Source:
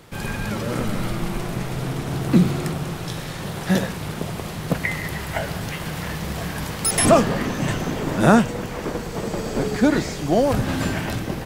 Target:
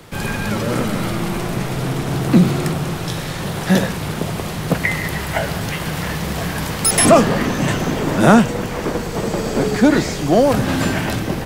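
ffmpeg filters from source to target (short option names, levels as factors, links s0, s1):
-filter_complex "[0:a]acrossover=split=120|1600[s0][s1][s2];[s0]asoftclip=type=hard:threshold=0.0211[s3];[s3][s1][s2]amix=inputs=3:normalize=0,acontrast=46"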